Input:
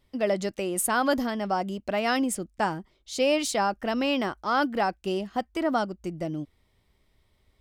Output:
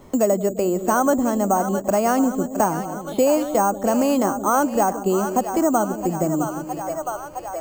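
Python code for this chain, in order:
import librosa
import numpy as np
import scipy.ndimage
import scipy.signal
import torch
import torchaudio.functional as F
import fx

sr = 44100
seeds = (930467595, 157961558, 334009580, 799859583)

p1 = fx.band_shelf(x, sr, hz=3700.0, db=-12.5, octaves=2.6)
p2 = fx.hum_notches(p1, sr, base_hz=50, count=3)
p3 = p2 + fx.echo_split(p2, sr, split_hz=550.0, low_ms=172, high_ms=663, feedback_pct=52, wet_db=-11, dry=0)
p4 = np.repeat(scipy.signal.resample_poly(p3, 1, 6), 6)[:len(p3)]
p5 = fx.band_squash(p4, sr, depth_pct=70)
y = F.gain(torch.from_numpy(p5), 7.0).numpy()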